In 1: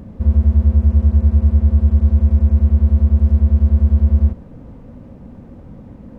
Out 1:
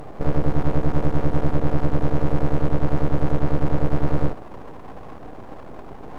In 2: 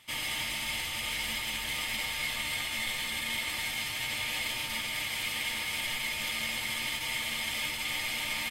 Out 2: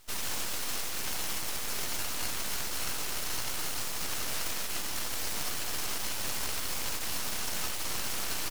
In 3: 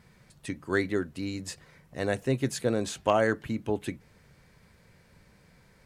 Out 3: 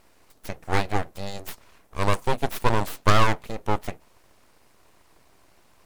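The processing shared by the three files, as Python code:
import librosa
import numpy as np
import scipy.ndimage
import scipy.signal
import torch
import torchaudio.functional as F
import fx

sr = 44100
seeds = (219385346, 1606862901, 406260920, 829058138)

y = fx.peak_eq(x, sr, hz=540.0, db=14.5, octaves=1.5)
y = fx.cheby_harmonics(y, sr, harmonics=(6,), levels_db=(-18,), full_scale_db=-0.5)
y = fx.high_shelf(y, sr, hz=4300.0, db=12.0)
y = np.abs(y)
y = y * librosa.db_to_amplitude(-3.5)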